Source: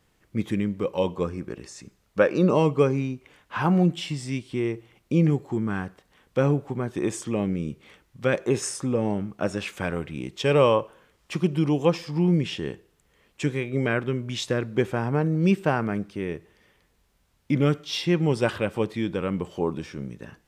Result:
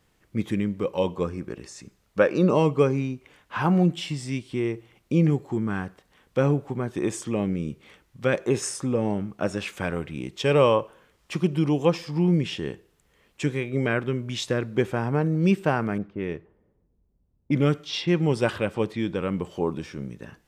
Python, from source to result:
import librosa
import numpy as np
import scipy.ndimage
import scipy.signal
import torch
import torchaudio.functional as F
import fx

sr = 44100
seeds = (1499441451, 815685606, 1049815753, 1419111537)

y = fx.env_lowpass(x, sr, base_hz=330.0, full_db=-22.5, at=(15.98, 19.21))